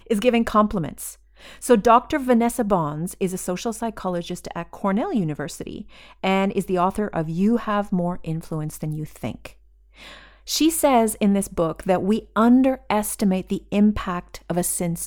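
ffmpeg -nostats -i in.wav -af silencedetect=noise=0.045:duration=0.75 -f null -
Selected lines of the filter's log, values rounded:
silence_start: 9.47
silence_end: 10.49 | silence_duration: 1.03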